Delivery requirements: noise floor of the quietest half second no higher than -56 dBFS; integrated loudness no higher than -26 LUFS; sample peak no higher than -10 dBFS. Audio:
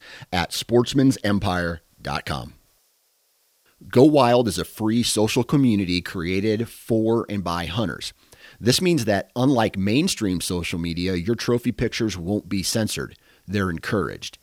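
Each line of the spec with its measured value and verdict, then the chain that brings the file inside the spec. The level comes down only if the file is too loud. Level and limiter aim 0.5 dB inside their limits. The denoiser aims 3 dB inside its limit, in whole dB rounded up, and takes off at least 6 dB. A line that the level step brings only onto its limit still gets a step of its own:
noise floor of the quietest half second -65 dBFS: pass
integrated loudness -22.0 LUFS: fail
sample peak -2.0 dBFS: fail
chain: trim -4.5 dB; peak limiter -10.5 dBFS

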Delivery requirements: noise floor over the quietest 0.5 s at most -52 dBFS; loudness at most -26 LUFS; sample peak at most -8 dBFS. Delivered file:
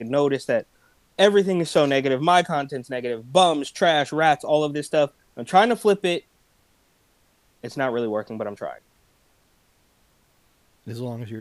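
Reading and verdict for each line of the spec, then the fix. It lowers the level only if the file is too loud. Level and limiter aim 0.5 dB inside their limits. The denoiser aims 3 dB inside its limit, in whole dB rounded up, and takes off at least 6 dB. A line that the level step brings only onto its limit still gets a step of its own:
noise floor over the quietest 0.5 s -63 dBFS: pass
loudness -21.5 LUFS: fail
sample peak -3.0 dBFS: fail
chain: trim -5 dB; peak limiter -8.5 dBFS

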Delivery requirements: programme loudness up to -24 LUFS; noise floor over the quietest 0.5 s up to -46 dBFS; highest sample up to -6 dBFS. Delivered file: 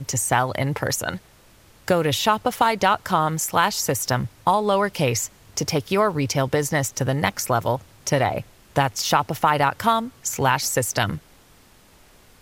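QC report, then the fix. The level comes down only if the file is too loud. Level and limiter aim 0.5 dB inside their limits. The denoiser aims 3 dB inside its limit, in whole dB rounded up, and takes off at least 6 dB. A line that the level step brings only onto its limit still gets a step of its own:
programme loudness -22.0 LUFS: fail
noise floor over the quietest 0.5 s -53 dBFS: pass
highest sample -5.0 dBFS: fail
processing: trim -2.5 dB

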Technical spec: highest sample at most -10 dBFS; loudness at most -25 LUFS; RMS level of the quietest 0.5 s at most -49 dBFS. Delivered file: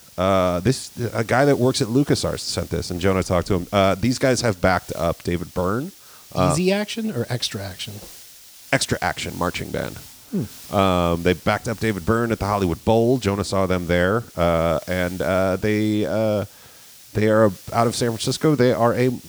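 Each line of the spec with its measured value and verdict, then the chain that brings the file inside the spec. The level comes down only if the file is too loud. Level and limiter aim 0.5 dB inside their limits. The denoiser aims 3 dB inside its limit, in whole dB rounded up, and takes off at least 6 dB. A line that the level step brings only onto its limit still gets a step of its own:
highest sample -4.0 dBFS: fail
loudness -21.0 LUFS: fail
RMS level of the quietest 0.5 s -46 dBFS: fail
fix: trim -4.5 dB; peak limiter -10.5 dBFS

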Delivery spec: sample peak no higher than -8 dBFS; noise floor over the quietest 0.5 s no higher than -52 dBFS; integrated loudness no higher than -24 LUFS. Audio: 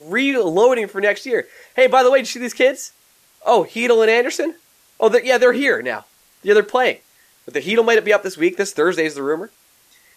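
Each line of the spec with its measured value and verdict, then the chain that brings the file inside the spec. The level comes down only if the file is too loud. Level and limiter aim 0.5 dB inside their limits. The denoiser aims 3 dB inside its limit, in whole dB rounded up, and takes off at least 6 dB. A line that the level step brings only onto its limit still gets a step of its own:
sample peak -3.5 dBFS: fail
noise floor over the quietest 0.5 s -55 dBFS: pass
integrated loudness -17.0 LUFS: fail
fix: trim -7.5 dB

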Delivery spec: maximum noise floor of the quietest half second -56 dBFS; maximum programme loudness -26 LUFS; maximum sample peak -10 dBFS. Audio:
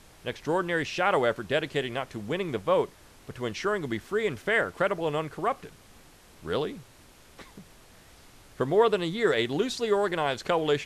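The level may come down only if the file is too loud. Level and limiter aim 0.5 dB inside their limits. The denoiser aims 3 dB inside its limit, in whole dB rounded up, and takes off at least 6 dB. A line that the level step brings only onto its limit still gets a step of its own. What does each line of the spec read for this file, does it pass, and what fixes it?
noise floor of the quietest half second -54 dBFS: fail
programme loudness -28.0 LUFS: pass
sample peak -10.5 dBFS: pass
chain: noise reduction 6 dB, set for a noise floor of -54 dBFS

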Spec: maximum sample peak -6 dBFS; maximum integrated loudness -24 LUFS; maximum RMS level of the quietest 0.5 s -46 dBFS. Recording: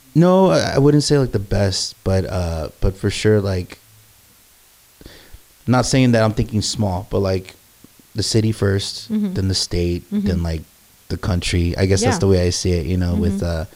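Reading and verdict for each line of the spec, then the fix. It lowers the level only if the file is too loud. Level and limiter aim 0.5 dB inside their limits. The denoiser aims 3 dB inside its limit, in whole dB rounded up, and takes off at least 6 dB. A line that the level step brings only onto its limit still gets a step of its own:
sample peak -3.0 dBFS: fail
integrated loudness -18.5 LUFS: fail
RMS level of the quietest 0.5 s -51 dBFS: pass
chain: trim -6 dB

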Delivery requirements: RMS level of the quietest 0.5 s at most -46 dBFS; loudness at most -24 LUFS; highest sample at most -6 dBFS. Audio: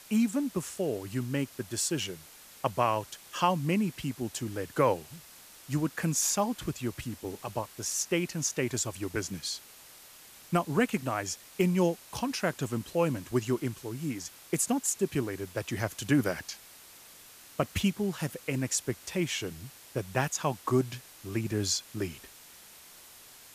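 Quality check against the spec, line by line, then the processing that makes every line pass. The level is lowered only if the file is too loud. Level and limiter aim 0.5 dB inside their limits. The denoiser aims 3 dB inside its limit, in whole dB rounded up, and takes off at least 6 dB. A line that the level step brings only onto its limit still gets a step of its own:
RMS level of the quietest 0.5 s -52 dBFS: pass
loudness -31.5 LUFS: pass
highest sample -11.5 dBFS: pass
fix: none needed

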